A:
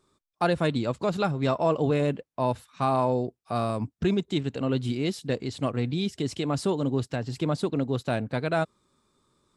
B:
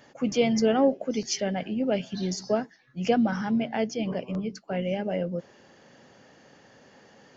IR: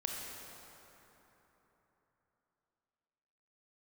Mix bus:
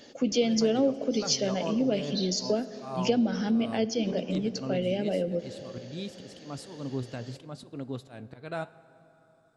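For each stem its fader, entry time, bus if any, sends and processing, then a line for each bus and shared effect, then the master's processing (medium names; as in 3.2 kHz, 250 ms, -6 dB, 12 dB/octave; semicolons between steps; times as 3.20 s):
-5.0 dB, 0.00 s, send -16 dB, slow attack 196 ms; flange 0.77 Hz, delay 2.5 ms, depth 6.8 ms, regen +78%
+2.0 dB, 0.00 s, send -14 dB, graphic EQ 125/250/500/1000/2000/4000 Hz -9/+4/+4/-10/-4/+9 dB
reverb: on, RT60 3.7 s, pre-delay 23 ms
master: compression 2:1, threshold -27 dBFS, peak gain reduction 9 dB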